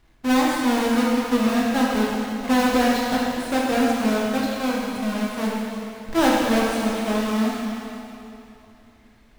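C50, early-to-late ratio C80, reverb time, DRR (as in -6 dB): -2.0 dB, -0.5 dB, 2.8 s, -4.5 dB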